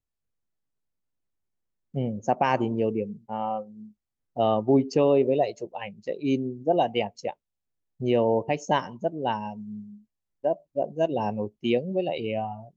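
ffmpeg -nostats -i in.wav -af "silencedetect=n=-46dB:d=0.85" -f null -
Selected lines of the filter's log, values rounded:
silence_start: 0.00
silence_end: 1.94 | silence_duration: 1.94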